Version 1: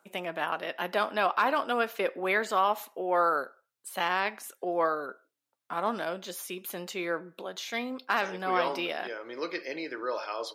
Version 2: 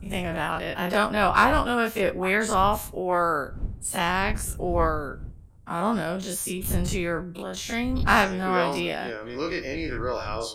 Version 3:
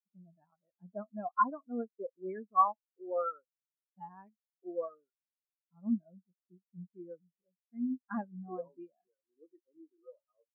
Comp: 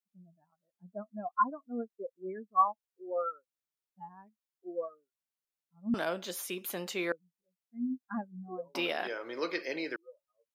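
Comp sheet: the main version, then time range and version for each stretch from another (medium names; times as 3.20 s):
3
5.94–7.12 s: from 1
8.75–9.96 s: from 1
not used: 2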